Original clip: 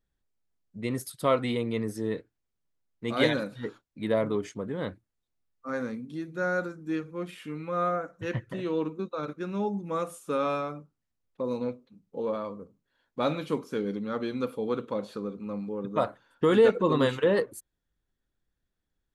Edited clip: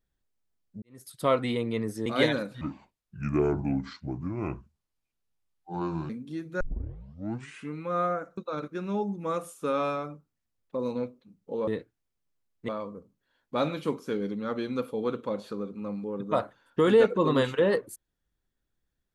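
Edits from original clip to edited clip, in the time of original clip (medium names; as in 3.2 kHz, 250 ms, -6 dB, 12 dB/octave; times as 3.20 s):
0.82–1.20 s: fade in quadratic
2.06–3.07 s: move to 12.33 s
3.62–5.92 s: speed 66%
6.43 s: tape start 1.10 s
8.20–9.03 s: delete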